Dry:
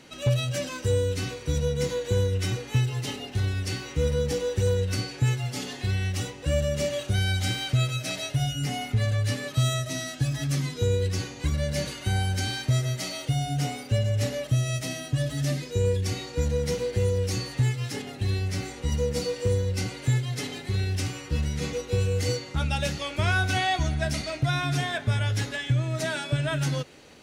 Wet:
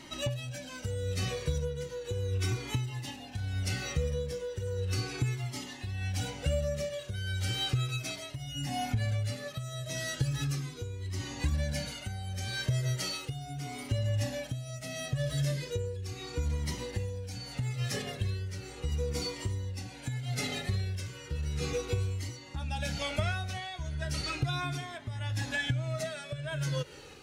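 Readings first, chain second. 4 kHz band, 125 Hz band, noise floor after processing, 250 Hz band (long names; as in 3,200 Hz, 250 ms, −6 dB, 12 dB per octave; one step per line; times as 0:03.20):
−5.5 dB, −7.5 dB, −46 dBFS, −7.5 dB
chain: downward compressor, threshold −30 dBFS, peak gain reduction 11 dB
amplitude tremolo 0.78 Hz, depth 64%
flanger whose copies keep moving one way falling 0.36 Hz
level +6.5 dB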